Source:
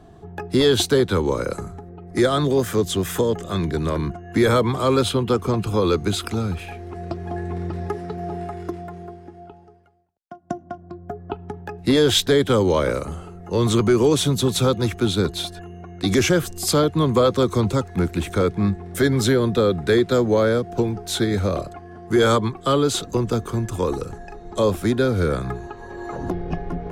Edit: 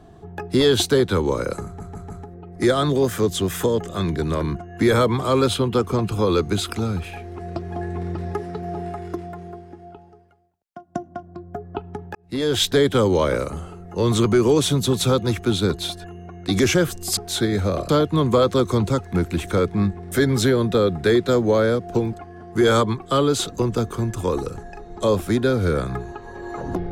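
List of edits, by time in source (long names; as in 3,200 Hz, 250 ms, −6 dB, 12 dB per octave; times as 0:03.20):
0:01.65: stutter 0.15 s, 4 plays
0:11.70–0:12.27: fade in
0:20.96–0:21.68: move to 0:16.72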